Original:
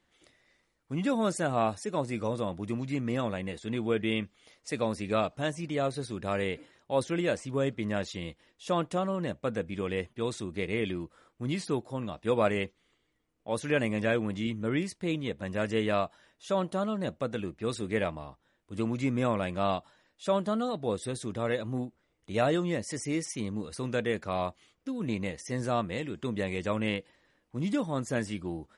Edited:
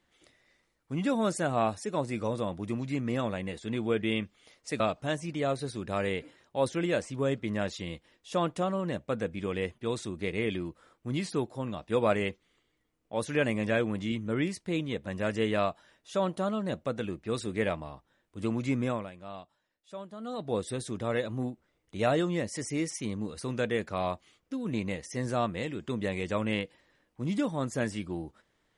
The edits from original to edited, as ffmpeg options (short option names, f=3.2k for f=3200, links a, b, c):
-filter_complex "[0:a]asplit=4[a][b][c][d];[a]atrim=end=4.802[e];[b]atrim=start=5.148:end=19.46,asetpts=PTS-STARTPTS,afade=t=out:st=13.992:d=0.32:silence=0.188365[f];[c]atrim=start=19.46:end=20.53,asetpts=PTS-STARTPTS,volume=-14.5dB[g];[d]atrim=start=20.53,asetpts=PTS-STARTPTS,afade=t=in:d=0.32:silence=0.188365[h];[f][g][h]concat=n=3:v=0:a=1[i];[e][i]acrossfade=d=0.004:c1=hsin:c2=hsin"